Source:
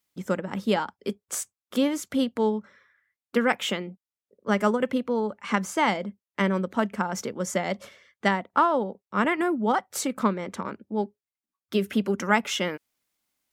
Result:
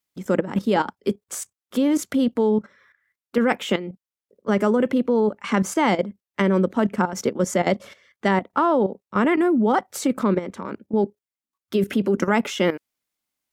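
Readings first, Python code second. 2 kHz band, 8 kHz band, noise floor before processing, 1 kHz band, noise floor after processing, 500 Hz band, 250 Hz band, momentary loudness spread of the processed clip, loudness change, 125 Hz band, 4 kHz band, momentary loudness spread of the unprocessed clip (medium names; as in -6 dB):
+0.5 dB, +1.0 dB, under -85 dBFS, +2.0 dB, under -85 dBFS, +5.5 dB, +6.0 dB, 8 LU, +4.5 dB, +6.0 dB, -0.5 dB, 9 LU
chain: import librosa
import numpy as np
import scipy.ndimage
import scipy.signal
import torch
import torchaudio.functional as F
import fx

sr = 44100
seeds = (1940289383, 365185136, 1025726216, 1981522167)

y = fx.dynamic_eq(x, sr, hz=330.0, q=0.81, threshold_db=-37.0, ratio=4.0, max_db=8)
y = fx.level_steps(y, sr, step_db=13)
y = y * 10.0 ** (8.0 / 20.0)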